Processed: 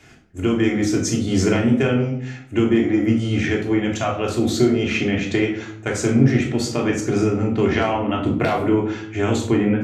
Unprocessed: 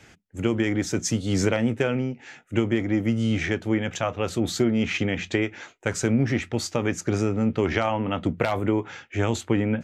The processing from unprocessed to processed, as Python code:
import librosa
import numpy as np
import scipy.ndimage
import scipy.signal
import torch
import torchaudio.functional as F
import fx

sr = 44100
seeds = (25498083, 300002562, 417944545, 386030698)

y = fx.room_shoebox(x, sr, seeds[0], volume_m3=1000.0, walls='furnished', distance_m=3.2)